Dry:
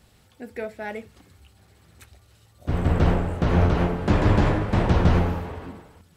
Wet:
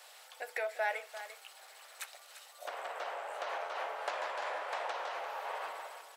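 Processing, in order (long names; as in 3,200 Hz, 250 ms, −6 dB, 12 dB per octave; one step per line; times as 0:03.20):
downward compressor 5 to 1, threshold −35 dBFS, peak gain reduction 19.5 dB
0:00.61–0:02.70: background noise pink −78 dBFS
Butterworth high-pass 580 Hz 36 dB per octave
on a send: single-tap delay 346 ms −12.5 dB
on the sum: level +7 dB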